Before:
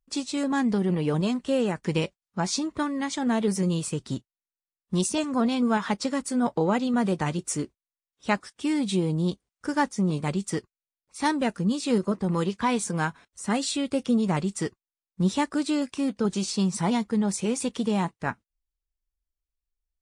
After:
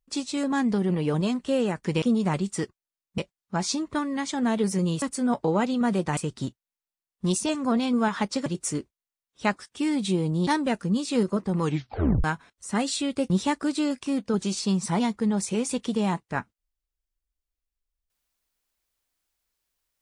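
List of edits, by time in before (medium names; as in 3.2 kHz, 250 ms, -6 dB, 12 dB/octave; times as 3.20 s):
6.15–7.30 s: move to 3.86 s
9.31–11.22 s: delete
12.37 s: tape stop 0.62 s
14.05–15.21 s: move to 2.02 s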